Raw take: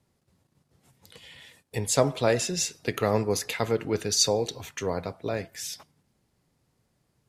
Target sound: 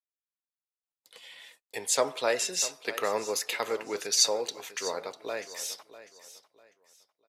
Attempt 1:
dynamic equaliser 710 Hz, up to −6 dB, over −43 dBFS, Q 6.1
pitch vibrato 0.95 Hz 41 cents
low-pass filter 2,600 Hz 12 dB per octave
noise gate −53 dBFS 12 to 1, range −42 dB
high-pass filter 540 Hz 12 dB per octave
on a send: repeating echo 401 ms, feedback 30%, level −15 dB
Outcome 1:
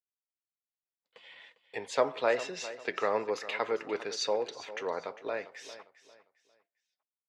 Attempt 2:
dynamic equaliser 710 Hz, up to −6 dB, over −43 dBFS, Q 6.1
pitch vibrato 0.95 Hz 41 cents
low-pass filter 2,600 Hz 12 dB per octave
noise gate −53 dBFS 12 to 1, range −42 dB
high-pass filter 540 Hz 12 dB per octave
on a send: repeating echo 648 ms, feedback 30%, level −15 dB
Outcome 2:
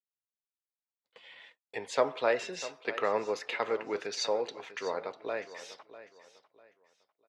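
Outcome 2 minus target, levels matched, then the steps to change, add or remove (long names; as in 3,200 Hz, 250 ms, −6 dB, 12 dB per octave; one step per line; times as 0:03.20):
2,000 Hz band +2.5 dB
remove: low-pass filter 2,600 Hz 12 dB per octave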